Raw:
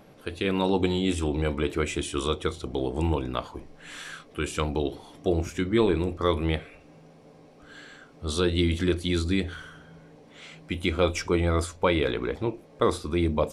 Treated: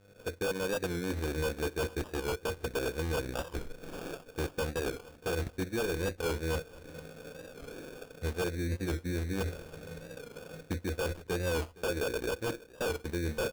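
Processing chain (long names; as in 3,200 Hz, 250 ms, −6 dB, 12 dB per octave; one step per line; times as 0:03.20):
fade in at the beginning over 0.58 s
low-shelf EQ 110 Hz +8 dB
reversed playback
downward compressor 16 to 1, threshold −30 dBFS, peak gain reduction 14.5 dB
reversed playback
linear-phase brick-wall band-stop 1,900–5,600 Hz
hum with harmonics 100 Hz, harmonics 31, −63 dBFS −7 dB per octave
hollow resonant body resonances 490/2,700 Hz, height 16 dB, ringing for 70 ms
soft clipping −22.5 dBFS, distortion −16 dB
transient designer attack +3 dB, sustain −11 dB
wave folding −26.5 dBFS
on a send: repeating echo 464 ms, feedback 29%, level −21 dB
on the sum: sample-rate reduction 2,000 Hz, jitter 0%
wow of a warped record 45 rpm, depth 100 cents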